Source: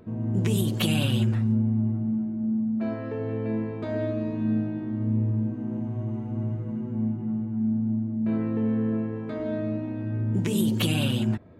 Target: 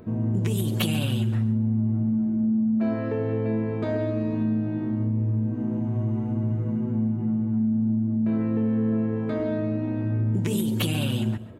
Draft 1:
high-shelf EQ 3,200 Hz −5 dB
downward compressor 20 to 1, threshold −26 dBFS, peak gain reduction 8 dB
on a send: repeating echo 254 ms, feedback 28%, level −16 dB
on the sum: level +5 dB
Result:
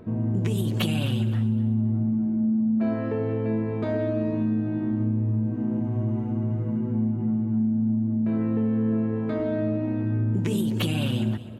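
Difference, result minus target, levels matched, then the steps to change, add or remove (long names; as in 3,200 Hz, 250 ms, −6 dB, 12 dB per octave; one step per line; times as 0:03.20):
echo 118 ms late; 8,000 Hz band −5.0 dB
add after downward compressor: high-shelf EQ 7,600 Hz +8.5 dB
change: repeating echo 136 ms, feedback 28%, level −16 dB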